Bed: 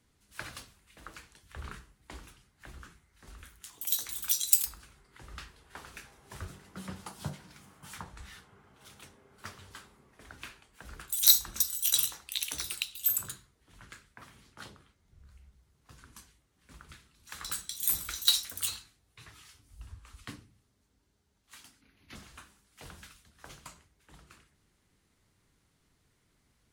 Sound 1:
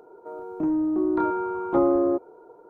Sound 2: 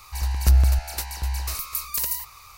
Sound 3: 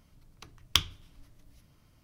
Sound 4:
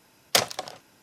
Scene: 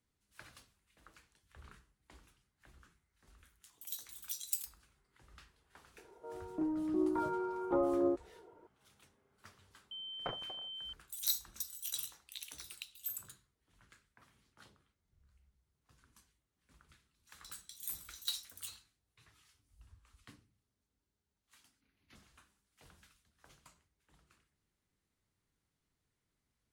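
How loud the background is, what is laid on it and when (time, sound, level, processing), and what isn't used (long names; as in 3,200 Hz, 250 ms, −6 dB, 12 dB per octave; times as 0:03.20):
bed −13.5 dB
0:05.98: mix in 1 −11 dB + phase shifter 0.96 Hz, delay 3.5 ms, feedback 34%
0:09.91: mix in 4 −17.5 dB + switching amplifier with a slow clock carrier 3,100 Hz
not used: 2, 3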